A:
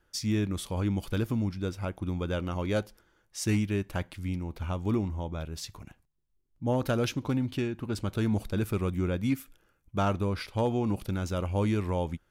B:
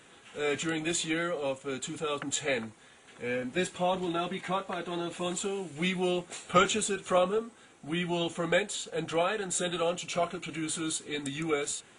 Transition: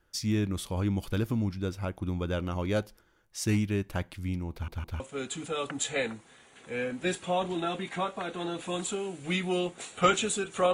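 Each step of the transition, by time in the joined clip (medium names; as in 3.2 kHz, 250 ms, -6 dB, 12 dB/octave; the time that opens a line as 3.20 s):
A
4.52 s: stutter in place 0.16 s, 3 plays
5.00 s: go over to B from 1.52 s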